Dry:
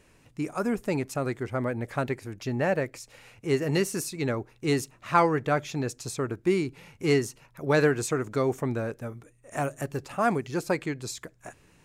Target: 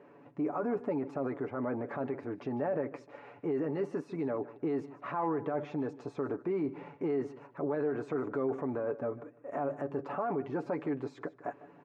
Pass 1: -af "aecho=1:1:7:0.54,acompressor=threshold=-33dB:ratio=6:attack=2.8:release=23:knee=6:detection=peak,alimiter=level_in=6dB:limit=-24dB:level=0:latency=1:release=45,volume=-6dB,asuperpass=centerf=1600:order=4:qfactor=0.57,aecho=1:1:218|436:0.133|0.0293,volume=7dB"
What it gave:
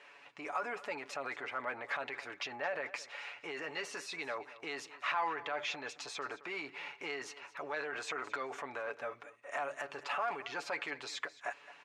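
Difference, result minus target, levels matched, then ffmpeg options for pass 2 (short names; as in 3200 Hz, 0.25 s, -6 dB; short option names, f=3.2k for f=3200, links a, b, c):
2000 Hz band +14.5 dB; echo 66 ms late
-af "aecho=1:1:7:0.54,acompressor=threshold=-33dB:ratio=6:attack=2.8:release=23:knee=6:detection=peak,alimiter=level_in=6dB:limit=-24dB:level=0:latency=1:release=45,volume=-6dB,asuperpass=centerf=530:order=4:qfactor=0.57,aecho=1:1:152|304:0.133|0.0293,volume=7dB"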